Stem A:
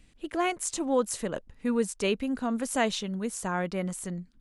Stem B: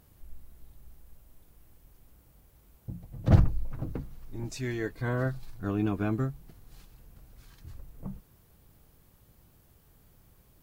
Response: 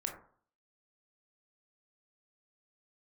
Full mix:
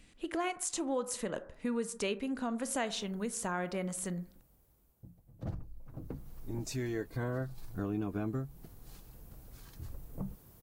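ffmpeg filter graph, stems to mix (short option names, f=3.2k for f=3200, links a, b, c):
-filter_complex "[0:a]volume=-0.5dB,asplit=2[a][b];[b]volume=-7.5dB[c];[1:a]equalizer=f=2.4k:t=o:w=2.5:g=-6.5,dynaudnorm=f=120:g=11:m=16dB,adelay=2150,volume=-10.5dB,afade=t=in:st=5.73:d=0.6:silence=0.354813[d];[2:a]atrim=start_sample=2205[e];[c][e]afir=irnorm=-1:irlink=0[f];[a][d][f]amix=inputs=3:normalize=0,lowshelf=f=170:g=-5.5,acompressor=threshold=-35dB:ratio=2.5"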